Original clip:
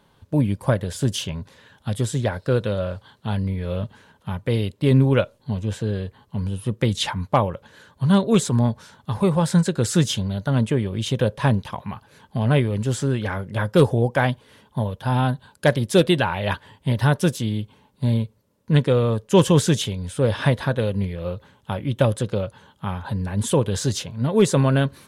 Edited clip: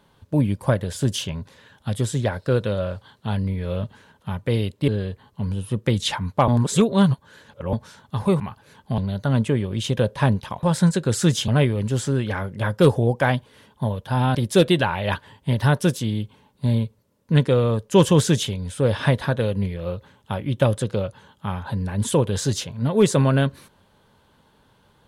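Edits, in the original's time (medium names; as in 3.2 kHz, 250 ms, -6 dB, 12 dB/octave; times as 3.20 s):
4.88–5.83 s: delete
7.43–8.68 s: reverse
9.35–10.20 s: swap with 11.85–12.43 s
15.30–15.74 s: delete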